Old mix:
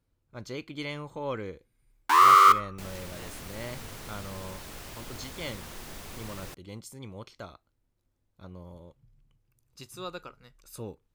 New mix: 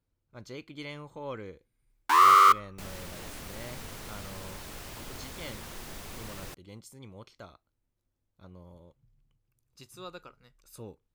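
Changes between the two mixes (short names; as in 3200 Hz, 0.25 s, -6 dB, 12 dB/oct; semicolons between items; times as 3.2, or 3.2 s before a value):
speech -5.0 dB; first sound: send -11.0 dB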